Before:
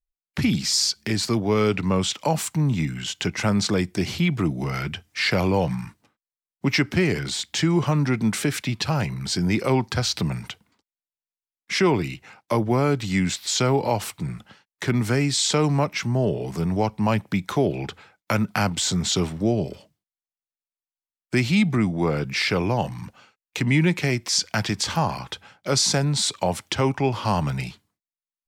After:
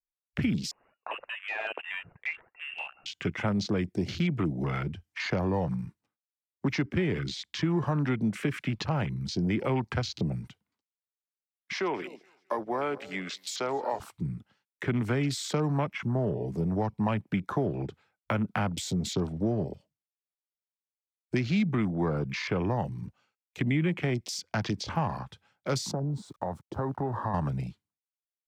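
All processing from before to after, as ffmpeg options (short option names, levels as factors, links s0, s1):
-filter_complex "[0:a]asettb=1/sr,asplit=3[s0][s1][s2];[s0]atrim=end=0.714[s3];[s1]atrim=start=0.71:end=3.06,asetpts=PTS-STARTPTS,afade=t=in:d=0.004:c=qsin,afade=t=out:st=2.346:d=0.004:c=qsin,highpass=f=760:p=1,aphaser=in_gain=1:out_gain=1:delay=2.1:decay=0.54:speed=1.9:type=triangular,lowpass=f=2500:t=q:w=0.5098,lowpass=f=2500:t=q:w=0.6013,lowpass=f=2500:t=q:w=0.9,lowpass=f=2500:t=q:w=2.563,afreqshift=-2900[s4];[s2]atrim=start=3.056[s5];[s3][s4]acrossfade=d=0.004:c1=hsin:c2=qsin[s6];[s6][s5]acrossfade=d=0.004:c1=qsin:c2=hsin,asettb=1/sr,asplit=3[s7][s8][s9];[s7]atrim=end=11.734[s10];[s8]atrim=start=11.73:end=14,asetpts=PTS-STARTPTS,afade=t=in:d=0.004:c=qsin,afade=t=out:st=2.266:d=0.004:c=qsin,highpass=470,aecho=1:1:213|426|639|852:0.15|0.0613|0.0252|0.0103,atrim=end_sample=100107[s11];[s9]atrim=start=13.996[s12];[s10][s11]acrossfade=d=0.004:c1=hsin:c2=qsin[s13];[s13][s12]acrossfade=d=0.004:c1=qsin:c2=hsin,asettb=1/sr,asplit=3[s14][s15][s16];[s14]atrim=end=25.914[s17];[s15]atrim=start=25.91:end=27.34,asetpts=PTS-STARTPTS,afade=t=in:d=0.004:c=qsin,afade=t=out:st=1.426:d=0.004:c=qsin,highshelf=f=1500:t=q:w=1.5:g=-10.5,acompressor=threshold=0.0631:ratio=4:attack=3.2:release=140:knee=1:detection=peak,aeval=exprs='val(0)*gte(abs(val(0)),0.00531)':c=same[s18];[s16]atrim=start=27.336[s19];[s17][s18]acrossfade=d=0.004:c1=hsin:c2=qsin[s20];[s20][s19]acrossfade=d=0.004:c1=qsin:c2=hsin,afwtdn=0.0251,acrossover=split=220|1300[s21][s22][s23];[s21]acompressor=threshold=0.0447:ratio=4[s24];[s22]acompressor=threshold=0.0501:ratio=4[s25];[s23]acompressor=threshold=0.02:ratio=4[s26];[s24][s25][s26]amix=inputs=3:normalize=0,volume=0.75"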